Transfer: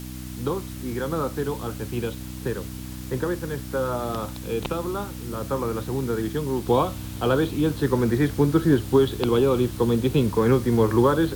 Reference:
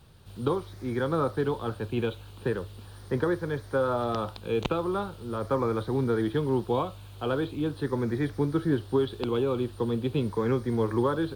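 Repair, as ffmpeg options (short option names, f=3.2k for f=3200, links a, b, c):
-af "bandreject=f=62.9:t=h:w=4,bandreject=f=125.8:t=h:w=4,bandreject=f=188.7:t=h:w=4,bandreject=f=251.6:t=h:w=4,bandreject=f=314.5:t=h:w=4,afwtdn=0.0063,asetnsamples=n=441:p=0,asendcmd='6.66 volume volume -7dB',volume=0dB"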